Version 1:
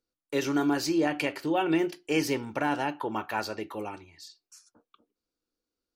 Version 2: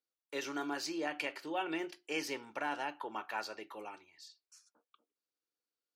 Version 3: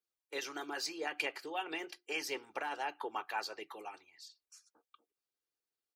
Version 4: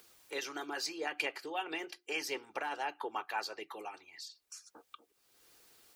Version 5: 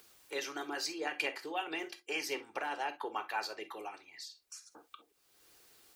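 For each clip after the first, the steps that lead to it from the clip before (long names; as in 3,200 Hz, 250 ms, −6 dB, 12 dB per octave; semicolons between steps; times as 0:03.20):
meter weighting curve A; level −7.5 dB
comb filter 2.5 ms, depth 49%; harmonic and percussive parts rebalanced harmonic −13 dB; level +2.5 dB
upward compression, threshold −41 dBFS; level +1 dB
reverb whose tail is shaped and stops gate 80 ms flat, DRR 9.5 dB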